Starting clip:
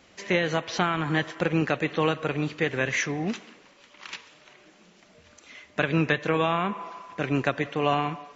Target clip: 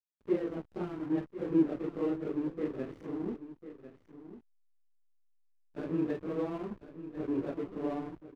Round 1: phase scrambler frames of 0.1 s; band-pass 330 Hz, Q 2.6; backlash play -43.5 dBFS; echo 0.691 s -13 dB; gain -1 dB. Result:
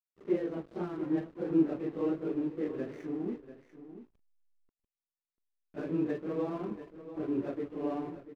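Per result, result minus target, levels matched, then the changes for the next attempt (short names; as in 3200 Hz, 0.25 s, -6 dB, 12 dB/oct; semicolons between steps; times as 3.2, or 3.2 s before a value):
echo 0.357 s early; backlash: distortion -6 dB
change: echo 1.048 s -13 dB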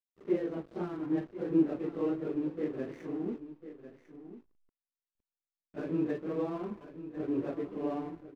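backlash: distortion -6 dB
change: backlash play -36.5 dBFS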